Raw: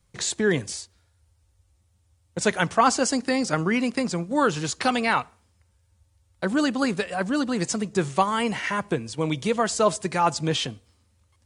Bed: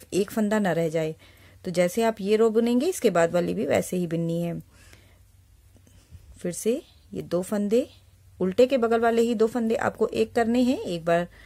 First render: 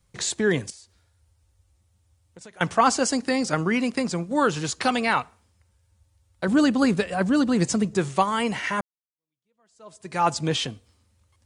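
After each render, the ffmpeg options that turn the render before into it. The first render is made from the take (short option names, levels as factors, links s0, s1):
-filter_complex "[0:a]asettb=1/sr,asplit=3[s0][s1][s2];[s0]atrim=end=0.704[s3];[s1]atrim=start=0.7:end=2.61,asetpts=PTS-STARTPTS,afade=t=in:d=0.004:c=qsin,afade=t=out:st=1.906:d=0.004:c=qsin,acompressor=threshold=0.00501:ratio=4:attack=3.2:release=140:knee=1:detection=peak[s4];[s2]atrim=start=2.606[s5];[s3][s4]acrossfade=d=0.004:c1=hsin:c2=qsin[s6];[s6][s5]acrossfade=d=0.004:c1=qsin:c2=hsin,asettb=1/sr,asplit=3[s7][s8][s9];[s7]atrim=end=6.484[s10];[s8]atrim=start=6.48:end=7.96,asetpts=PTS-STARTPTS,afade=t=in:d=0.004:c=qsin,afade=t=out:st=1.476:d=0.004:c=qsin,lowshelf=f=330:g=7.5[s11];[s9]atrim=start=7.956[s12];[s10][s11]acrossfade=d=0.004:c1=hsin:c2=qsin[s13];[s13][s12]acrossfade=d=0.004:c1=qsin:c2=hsin,asplit=2[s14][s15];[s14]atrim=end=8.81,asetpts=PTS-STARTPTS,afade=t=out:st=8.806:d=0.004:c=hsin[s16];[s15]atrim=start=8.81,asetpts=PTS-STARTPTS,afade=t=in:d=1.4:c=exp[s17];[s16][s17]concat=n=2:v=0:a=1"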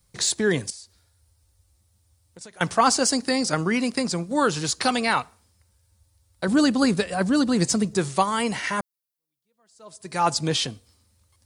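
-af "aexciter=amount=1.9:drive=5.7:freq=4000"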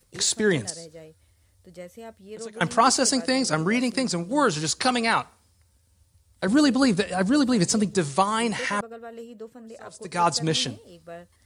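-filter_complex "[1:a]volume=0.119[s0];[0:a][s0]amix=inputs=2:normalize=0"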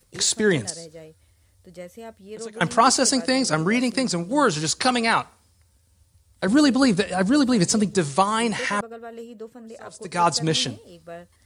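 -af "volume=1.26"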